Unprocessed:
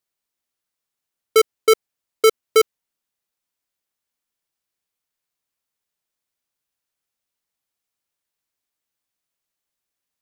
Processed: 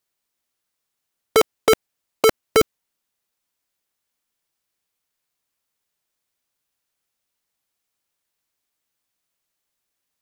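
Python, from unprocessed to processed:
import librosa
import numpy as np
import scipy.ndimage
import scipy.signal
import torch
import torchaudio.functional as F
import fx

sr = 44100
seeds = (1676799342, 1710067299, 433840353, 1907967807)

y = (np.mod(10.0 ** (12.5 / 20.0) * x + 1.0, 2.0) - 1.0) / 10.0 ** (12.5 / 20.0)
y = y * 10.0 ** (4.0 / 20.0)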